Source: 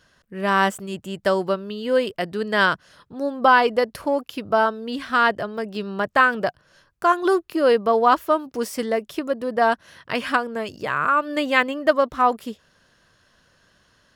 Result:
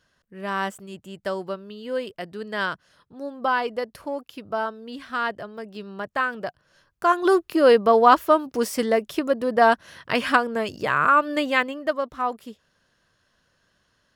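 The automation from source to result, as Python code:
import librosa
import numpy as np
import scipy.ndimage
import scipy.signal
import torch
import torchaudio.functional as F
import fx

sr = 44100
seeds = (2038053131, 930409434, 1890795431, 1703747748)

y = fx.gain(x, sr, db=fx.line((6.4, -8.0), (7.45, 2.0), (11.18, 2.0), (11.95, -7.5)))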